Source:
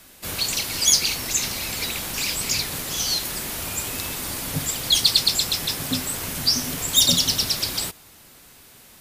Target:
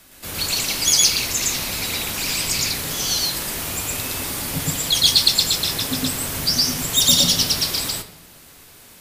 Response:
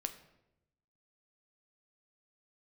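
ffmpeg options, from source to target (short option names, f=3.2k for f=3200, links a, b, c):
-filter_complex "[0:a]asplit=2[a][b];[1:a]atrim=start_sample=2205,adelay=114[c];[b][c]afir=irnorm=-1:irlink=0,volume=2.5dB[d];[a][d]amix=inputs=2:normalize=0,volume=-1dB"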